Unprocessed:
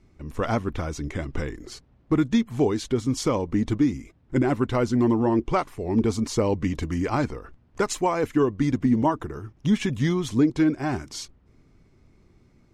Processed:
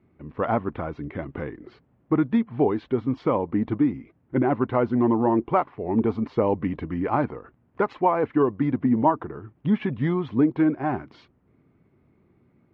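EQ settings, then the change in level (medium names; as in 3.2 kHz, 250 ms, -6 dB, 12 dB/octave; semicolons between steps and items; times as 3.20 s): dynamic bell 840 Hz, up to +6 dB, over -38 dBFS, Q 1.1; band-pass 120–3300 Hz; distance through air 380 m; 0.0 dB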